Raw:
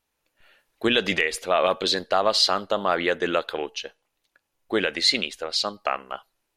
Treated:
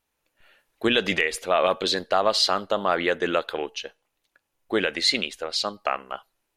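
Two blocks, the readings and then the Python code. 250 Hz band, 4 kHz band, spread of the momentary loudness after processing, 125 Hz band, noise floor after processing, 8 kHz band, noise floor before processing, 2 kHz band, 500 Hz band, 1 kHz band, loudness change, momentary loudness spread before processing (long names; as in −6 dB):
0.0 dB, −1.5 dB, 11 LU, 0.0 dB, −79 dBFS, −0.5 dB, −78 dBFS, 0.0 dB, 0.0 dB, 0.0 dB, −0.5 dB, 12 LU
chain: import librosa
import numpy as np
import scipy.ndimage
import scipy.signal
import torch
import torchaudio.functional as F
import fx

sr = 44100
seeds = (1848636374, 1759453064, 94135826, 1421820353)

y = fx.peak_eq(x, sr, hz=4700.0, db=-2.0, octaves=0.77)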